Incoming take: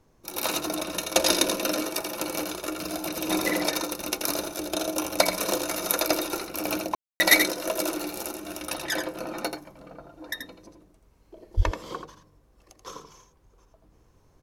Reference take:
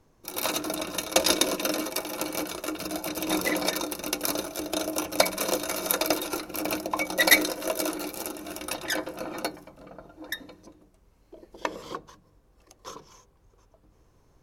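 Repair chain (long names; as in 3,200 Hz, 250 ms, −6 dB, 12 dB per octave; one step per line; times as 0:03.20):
0:11.56–0:11.68: high-pass filter 140 Hz 24 dB per octave
ambience match 0:06.95–0:07.20
echo removal 83 ms −7 dB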